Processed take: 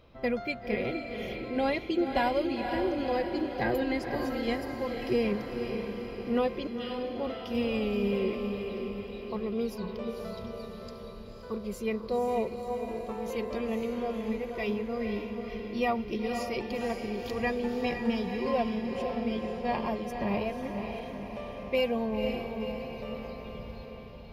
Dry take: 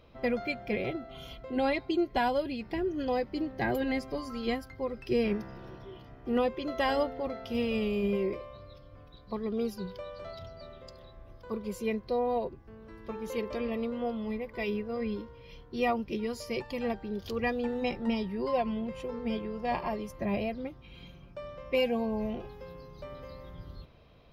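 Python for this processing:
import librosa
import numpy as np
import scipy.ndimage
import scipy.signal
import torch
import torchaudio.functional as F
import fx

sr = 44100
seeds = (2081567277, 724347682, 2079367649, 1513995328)

y = fx.ladder_bandpass(x, sr, hz=3600.0, resonance_pct=60, at=(6.67, 7.16))
y = fx.echo_diffused(y, sr, ms=509, feedback_pct=60, wet_db=-5.5)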